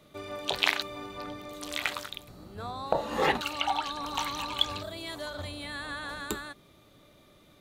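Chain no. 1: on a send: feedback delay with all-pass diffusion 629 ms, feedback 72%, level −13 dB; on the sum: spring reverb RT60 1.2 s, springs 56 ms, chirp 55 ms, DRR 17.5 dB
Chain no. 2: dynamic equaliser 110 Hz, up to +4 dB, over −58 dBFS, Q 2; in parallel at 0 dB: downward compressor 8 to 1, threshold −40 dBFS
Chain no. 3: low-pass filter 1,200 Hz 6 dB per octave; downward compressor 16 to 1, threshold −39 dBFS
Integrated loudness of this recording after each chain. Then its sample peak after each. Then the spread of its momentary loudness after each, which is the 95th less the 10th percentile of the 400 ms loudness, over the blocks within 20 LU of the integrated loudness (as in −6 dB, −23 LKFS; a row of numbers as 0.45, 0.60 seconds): −32.0, −30.5, −44.0 LKFS; −6.0, −5.0, −22.5 dBFS; 16, 11, 12 LU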